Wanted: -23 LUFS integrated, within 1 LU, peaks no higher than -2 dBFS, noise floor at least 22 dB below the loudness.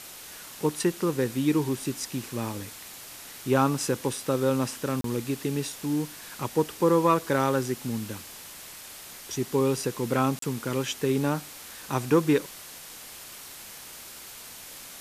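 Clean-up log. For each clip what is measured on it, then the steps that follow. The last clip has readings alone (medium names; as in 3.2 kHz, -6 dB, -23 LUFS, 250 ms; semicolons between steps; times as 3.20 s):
dropouts 2; longest dropout 33 ms; noise floor -44 dBFS; noise floor target -50 dBFS; loudness -27.5 LUFS; peak level -9.5 dBFS; loudness target -23.0 LUFS
-> interpolate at 5.01/10.39 s, 33 ms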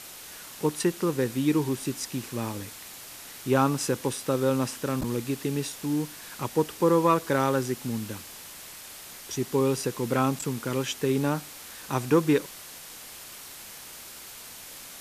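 dropouts 0; noise floor -44 dBFS; noise floor target -50 dBFS
-> noise reduction 6 dB, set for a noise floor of -44 dBFS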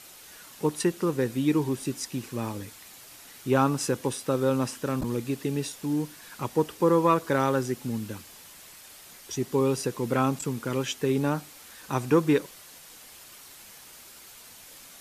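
noise floor -49 dBFS; noise floor target -50 dBFS
-> noise reduction 6 dB, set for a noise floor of -49 dBFS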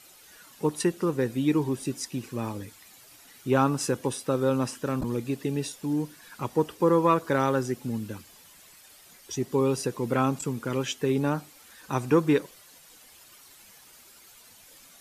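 noise floor -53 dBFS; loudness -27.5 LUFS; peak level -9.5 dBFS; loudness target -23.0 LUFS
-> trim +4.5 dB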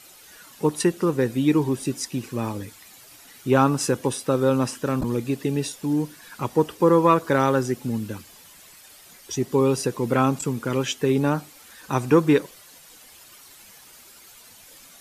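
loudness -23.0 LUFS; peak level -5.0 dBFS; noise floor -49 dBFS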